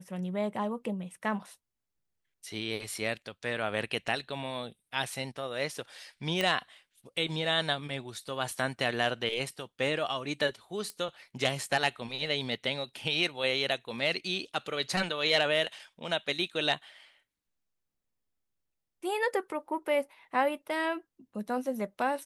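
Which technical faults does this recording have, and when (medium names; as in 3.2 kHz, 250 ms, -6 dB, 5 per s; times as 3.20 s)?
6.41 s: pop -15 dBFS
10.90 s: pop -23 dBFS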